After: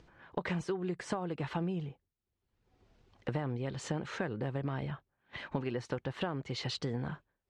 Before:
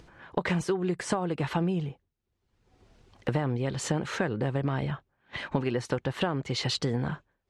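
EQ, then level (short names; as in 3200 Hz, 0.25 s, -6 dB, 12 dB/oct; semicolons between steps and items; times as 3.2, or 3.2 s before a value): Bessel low-pass 6100 Hz, order 2; -7.0 dB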